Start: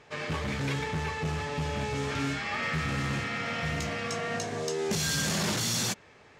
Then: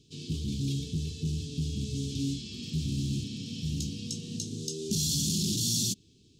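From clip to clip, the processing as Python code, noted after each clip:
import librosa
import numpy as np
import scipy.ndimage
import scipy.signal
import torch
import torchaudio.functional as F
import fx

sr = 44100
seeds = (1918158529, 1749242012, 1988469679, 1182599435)

y = scipy.signal.sosfilt(scipy.signal.cheby2(4, 40, [560.0, 2100.0], 'bandstop', fs=sr, output='sos'), x)
y = F.gain(torch.from_numpy(y), 1.5).numpy()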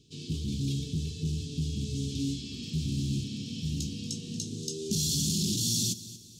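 y = fx.echo_feedback(x, sr, ms=233, feedback_pct=41, wet_db=-16)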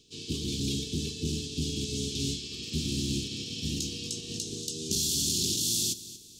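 y = fx.spec_clip(x, sr, under_db=15)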